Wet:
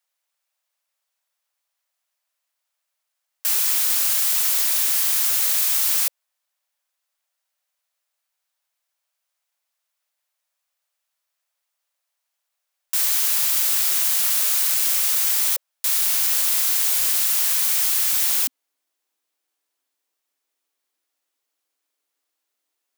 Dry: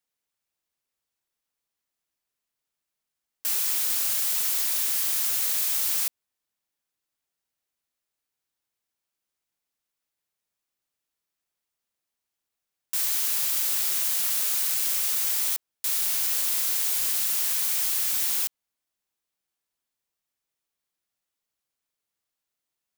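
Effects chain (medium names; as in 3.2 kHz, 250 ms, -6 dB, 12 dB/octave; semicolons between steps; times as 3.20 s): elliptic high-pass 550 Hz, stop band 40 dB, from 18.40 s 260 Hz; trim +6.5 dB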